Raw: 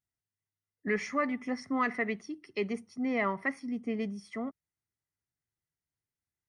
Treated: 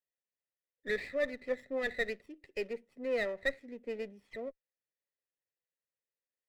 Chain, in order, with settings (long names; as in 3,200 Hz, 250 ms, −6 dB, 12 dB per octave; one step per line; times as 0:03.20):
formant filter e
windowed peak hold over 5 samples
level +8 dB